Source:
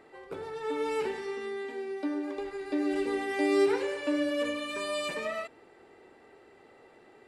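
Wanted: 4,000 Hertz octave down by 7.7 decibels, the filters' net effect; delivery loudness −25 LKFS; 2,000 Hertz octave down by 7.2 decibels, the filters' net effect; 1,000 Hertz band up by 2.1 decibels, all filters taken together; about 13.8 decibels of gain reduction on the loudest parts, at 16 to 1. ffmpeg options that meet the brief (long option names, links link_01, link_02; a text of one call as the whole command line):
ffmpeg -i in.wav -af "equalizer=frequency=1000:width_type=o:gain=5,equalizer=frequency=2000:width_type=o:gain=-8,equalizer=frequency=4000:width_type=o:gain=-7.5,acompressor=threshold=-34dB:ratio=16,volume=13.5dB" out.wav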